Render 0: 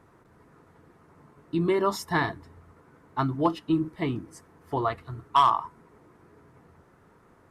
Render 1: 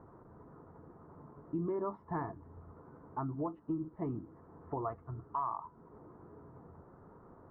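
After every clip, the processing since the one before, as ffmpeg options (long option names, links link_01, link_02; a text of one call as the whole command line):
ffmpeg -i in.wav -af "lowpass=frequency=1200:width=0.5412,lowpass=frequency=1200:width=1.3066,alimiter=limit=-19.5dB:level=0:latency=1:release=367,acompressor=threshold=-54dB:ratio=1.5,volume=2.5dB" out.wav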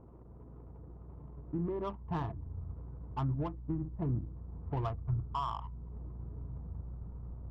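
ffmpeg -i in.wav -af "aeval=exprs='val(0)+0.00141*(sin(2*PI*60*n/s)+sin(2*PI*2*60*n/s)/2+sin(2*PI*3*60*n/s)/3+sin(2*PI*4*60*n/s)/4+sin(2*PI*5*60*n/s)/5)':channel_layout=same,asubboost=boost=6.5:cutoff=130,adynamicsmooth=sensitivity=6:basefreq=660,volume=1dB" out.wav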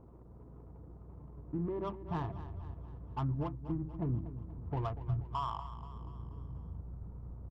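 ffmpeg -i in.wav -af "aecho=1:1:240|480|720|960|1200:0.224|0.119|0.0629|0.0333|0.0177,volume=-1dB" out.wav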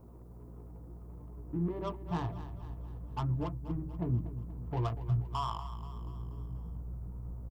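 ffmpeg -i in.wav -filter_complex "[0:a]acrossover=split=1000[link_01][link_02];[link_01]asplit=2[link_03][link_04];[link_04]adelay=17,volume=-2.5dB[link_05];[link_03][link_05]amix=inputs=2:normalize=0[link_06];[link_02]crystalizer=i=3:c=0[link_07];[link_06][link_07]amix=inputs=2:normalize=0" out.wav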